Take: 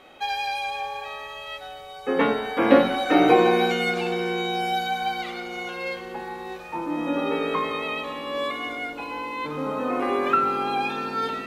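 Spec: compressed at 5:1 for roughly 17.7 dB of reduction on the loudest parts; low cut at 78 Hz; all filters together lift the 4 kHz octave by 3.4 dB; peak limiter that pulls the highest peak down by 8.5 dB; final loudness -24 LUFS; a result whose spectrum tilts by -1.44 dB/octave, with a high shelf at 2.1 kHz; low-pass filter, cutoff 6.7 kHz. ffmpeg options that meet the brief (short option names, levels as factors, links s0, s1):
-af "highpass=78,lowpass=6700,highshelf=f=2100:g=-4.5,equalizer=f=4000:t=o:g=8.5,acompressor=threshold=0.0282:ratio=5,volume=3.55,alimiter=limit=0.168:level=0:latency=1"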